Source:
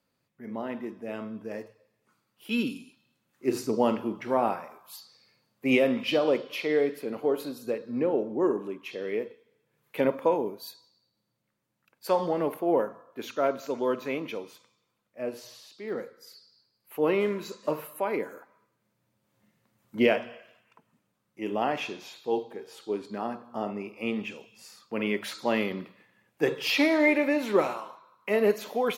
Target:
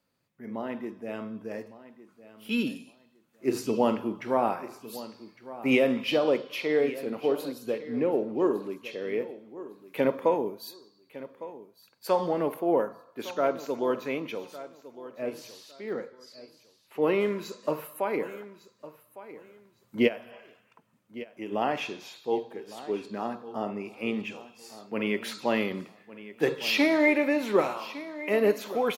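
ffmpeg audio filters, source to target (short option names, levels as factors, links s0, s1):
-filter_complex "[0:a]asettb=1/sr,asplit=3[s0][s1][s2];[s0]atrim=end=15.934[s3];[s1]atrim=start=15.93:end=17.02,asetpts=PTS-STARTPTS,afade=t=in:d=0.004:c=qsin,afade=t=out:st=1.086:d=0.004:c=qsin,lowpass=6900[s4];[s2]atrim=start=17.016[s5];[s3][s4]acrossfade=d=0.004:c1=hsin:c2=qsin[s6];[s6][s5]acrossfade=d=0.004:c1=qsin:c2=hsin,asplit=3[s7][s8][s9];[s7]afade=t=out:st=20.07:d=0.02[s10];[s8]acompressor=threshold=0.02:ratio=4,afade=t=in:st=20.07:d=0.02,afade=t=out:st=21.51:d=0.02[s11];[s9]afade=t=in:st=21.51:d=0.02[s12];[s10][s11][s12]amix=inputs=3:normalize=0,aecho=1:1:1157|2314:0.158|0.038"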